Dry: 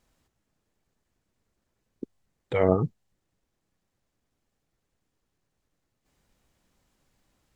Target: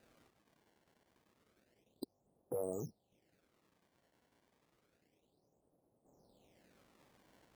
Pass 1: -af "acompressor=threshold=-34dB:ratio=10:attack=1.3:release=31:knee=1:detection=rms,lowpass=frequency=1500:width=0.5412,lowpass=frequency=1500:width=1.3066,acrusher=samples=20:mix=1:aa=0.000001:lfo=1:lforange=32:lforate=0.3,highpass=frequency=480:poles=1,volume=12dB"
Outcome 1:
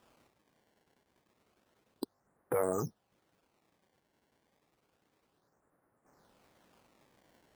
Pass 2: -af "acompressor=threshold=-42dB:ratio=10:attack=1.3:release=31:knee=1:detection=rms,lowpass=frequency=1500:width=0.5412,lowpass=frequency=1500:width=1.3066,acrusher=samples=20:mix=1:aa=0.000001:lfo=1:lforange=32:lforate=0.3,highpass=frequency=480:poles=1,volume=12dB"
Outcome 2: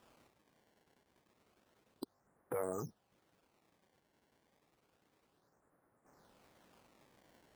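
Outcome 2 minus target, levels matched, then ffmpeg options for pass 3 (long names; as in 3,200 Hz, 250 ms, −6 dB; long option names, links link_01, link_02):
1,000 Hz band +6.5 dB
-af "acompressor=threshold=-42dB:ratio=10:attack=1.3:release=31:knee=1:detection=rms,lowpass=frequency=730:width=0.5412,lowpass=frequency=730:width=1.3066,acrusher=samples=20:mix=1:aa=0.000001:lfo=1:lforange=32:lforate=0.3,highpass=frequency=480:poles=1,volume=12dB"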